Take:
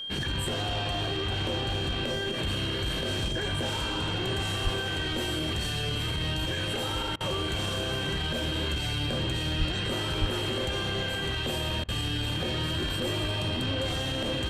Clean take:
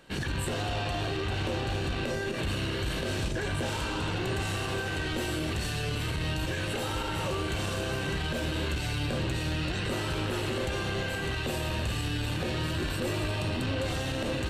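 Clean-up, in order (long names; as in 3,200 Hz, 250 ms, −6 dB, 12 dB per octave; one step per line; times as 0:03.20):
notch filter 3,200 Hz, Q 30
0:04.63–0:04.75: high-pass filter 140 Hz 24 dB per octave
0:09.58–0:09.70: high-pass filter 140 Hz 24 dB per octave
0:10.20–0:10.32: high-pass filter 140 Hz 24 dB per octave
repair the gap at 0:07.16/0:11.84, 44 ms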